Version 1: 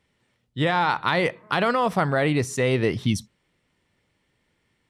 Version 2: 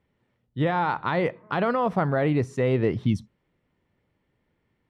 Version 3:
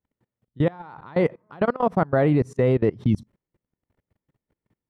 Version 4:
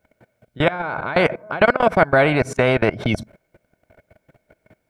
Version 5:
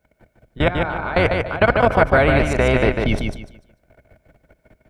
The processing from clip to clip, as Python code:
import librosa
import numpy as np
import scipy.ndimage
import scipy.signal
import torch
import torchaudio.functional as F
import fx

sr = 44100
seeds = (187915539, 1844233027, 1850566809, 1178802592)

y1 = fx.lowpass(x, sr, hz=1000.0, slope=6)
y2 = fx.peak_eq(y1, sr, hz=2900.0, db=-6.5, octaves=2.0)
y2 = fx.level_steps(y2, sr, step_db=24)
y2 = y2 * librosa.db_to_amplitude(6.0)
y3 = fx.small_body(y2, sr, hz=(640.0, 1500.0, 2200.0), ring_ms=30, db=18)
y3 = fx.spectral_comp(y3, sr, ratio=2.0)
y3 = y3 * librosa.db_to_amplitude(-4.0)
y4 = fx.octave_divider(y3, sr, octaves=2, level_db=1.0)
y4 = fx.echo_feedback(y4, sr, ms=148, feedback_pct=26, wet_db=-4.5)
y4 = y4 * librosa.db_to_amplitude(-1.0)